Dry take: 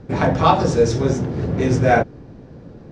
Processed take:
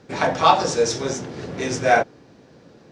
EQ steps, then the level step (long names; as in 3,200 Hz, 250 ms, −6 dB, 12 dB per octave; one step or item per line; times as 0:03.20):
high-pass filter 340 Hz 6 dB per octave
high-shelf EQ 2,100 Hz +11.5 dB
dynamic equaliser 780 Hz, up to +4 dB, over −24 dBFS, Q 0.91
−4.5 dB